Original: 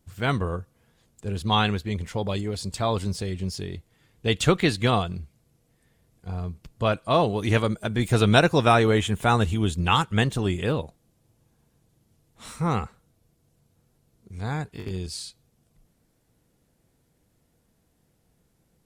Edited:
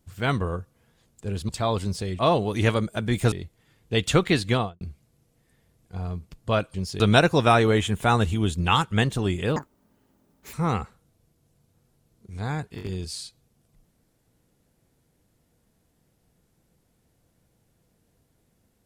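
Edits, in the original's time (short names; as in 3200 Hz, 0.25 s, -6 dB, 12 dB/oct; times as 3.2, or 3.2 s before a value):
1.49–2.69 cut
3.39–3.65 swap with 7.07–8.2
4.82–5.14 studio fade out
10.76–12.55 speed 184%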